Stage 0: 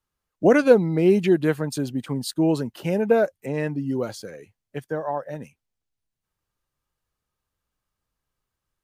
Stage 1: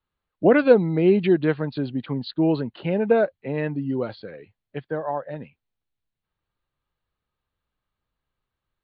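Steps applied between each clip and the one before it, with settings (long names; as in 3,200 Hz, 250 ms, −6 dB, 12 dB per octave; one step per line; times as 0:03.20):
Butterworth low-pass 4,400 Hz 96 dB per octave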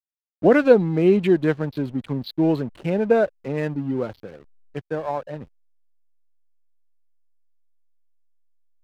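slack as between gear wheels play −35.5 dBFS
level +1 dB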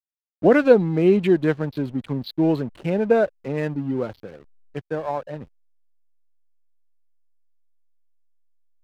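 no processing that can be heard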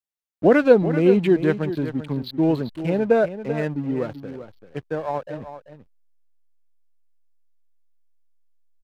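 single-tap delay 388 ms −11.5 dB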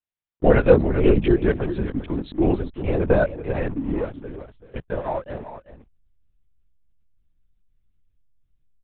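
linear-prediction vocoder at 8 kHz whisper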